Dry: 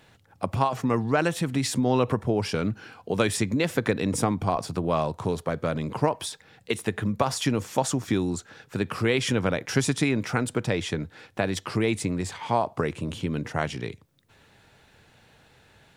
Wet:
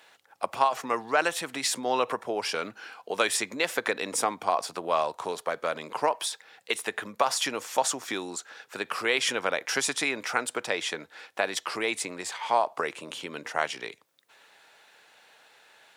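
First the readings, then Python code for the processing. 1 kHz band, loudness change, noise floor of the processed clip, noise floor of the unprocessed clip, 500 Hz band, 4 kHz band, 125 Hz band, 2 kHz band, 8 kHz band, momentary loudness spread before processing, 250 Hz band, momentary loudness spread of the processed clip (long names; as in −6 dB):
+1.5 dB, −2.0 dB, −61 dBFS, −59 dBFS, −3.0 dB, +2.5 dB, −23.5 dB, +2.5 dB, +2.5 dB, 8 LU, −12.5 dB, 10 LU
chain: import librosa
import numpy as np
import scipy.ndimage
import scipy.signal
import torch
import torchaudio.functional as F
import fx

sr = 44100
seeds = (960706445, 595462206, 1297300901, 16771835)

y = scipy.signal.sosfilt(scipy.signal.butter(2, 630.0, 'highpass', fs=sr, output='sos'), x)
y = y * librosa.db_to_amplitude(2.5)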